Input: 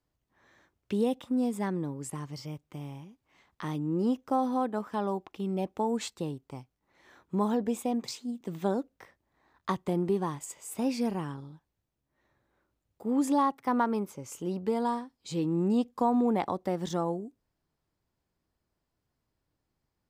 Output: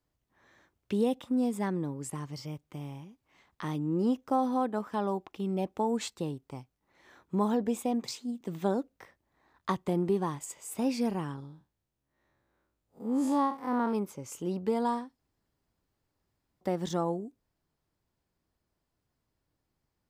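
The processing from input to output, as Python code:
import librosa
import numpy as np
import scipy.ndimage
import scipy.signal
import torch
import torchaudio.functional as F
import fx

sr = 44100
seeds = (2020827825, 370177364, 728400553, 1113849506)

y = fx.spec_blur(x, sr, span_ms=107.0, at=(11.45, 13.93), fade=0.02)
y = fx.edit(y, sr, fx.room_tone_fill(start_s=15.19, length_s=1.42), tone=tone)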